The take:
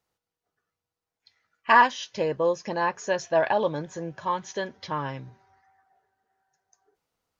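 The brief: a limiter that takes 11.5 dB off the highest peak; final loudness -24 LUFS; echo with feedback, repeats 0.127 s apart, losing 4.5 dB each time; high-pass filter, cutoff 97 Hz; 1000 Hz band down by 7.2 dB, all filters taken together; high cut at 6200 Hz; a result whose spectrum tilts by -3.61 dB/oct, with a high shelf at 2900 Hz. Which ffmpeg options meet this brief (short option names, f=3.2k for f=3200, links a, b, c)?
-af "highpass=97,lowpass=6.2k,equalizer=f=1k:t=o:g=-9,highshelf=f=2.9k:g=8,alimiter=limit=-19dB:level=0:latency=1,aecho=1:1:127|254|381|508|635|762|889|1016|1143:0.596|0.357|0.214|0.129|0.0772|0.0463|0.0278|0.0167|0.01,volume=5.5dB"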